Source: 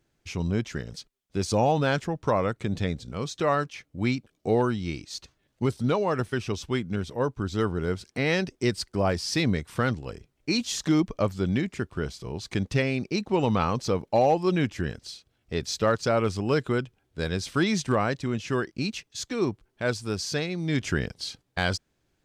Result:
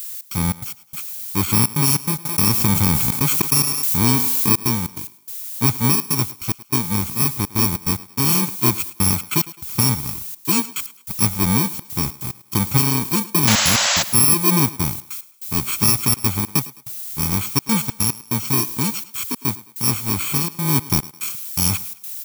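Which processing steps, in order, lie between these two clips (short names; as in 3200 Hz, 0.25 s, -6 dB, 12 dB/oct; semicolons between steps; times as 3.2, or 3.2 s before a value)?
FFT order left unsorted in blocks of 64 samples; HPF 88 Hz; comb 0.9 ms, depth 65%; added noise violet -37 dBFS; step gate "xx.xx.x..xxxxx" 145 bpm -60 dB; 13.47–14.03 painted sound noise 510–7900 Hz -24 dBFS; thinning echo 0.106 s, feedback 39%, high-pass 220 Hz, level -17.5 dB; 2.25–4.52 fast leveller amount 70%; gain +6 dB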